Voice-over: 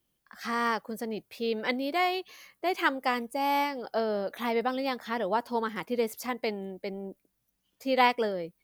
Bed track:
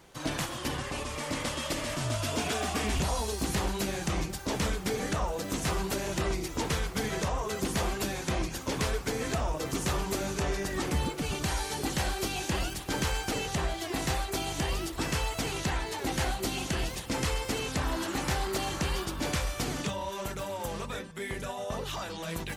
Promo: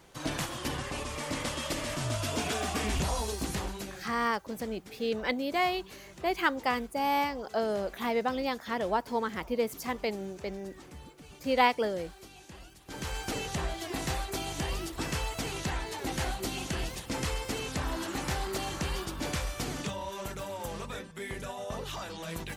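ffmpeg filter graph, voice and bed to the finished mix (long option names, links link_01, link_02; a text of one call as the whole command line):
ffmpeg -i stem1.wav -i stem2.wav -filter_complex "[0:a]adelay=3600,volume=-1dB[link_01];[1:a]volume=15dB,afade=type=out:start_time=3.26:duration=0.87:silence=0.133352,afade=type=in:start_time=12.8:duration=0.49:silence=0.158489[link_02];[link_01][link_02]amix=inputs=2:normalize=0" out.wav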